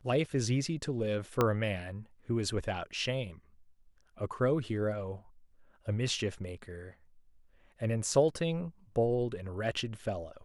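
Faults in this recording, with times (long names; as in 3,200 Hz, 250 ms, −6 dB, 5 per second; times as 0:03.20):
0:01.41: click −13 dBFS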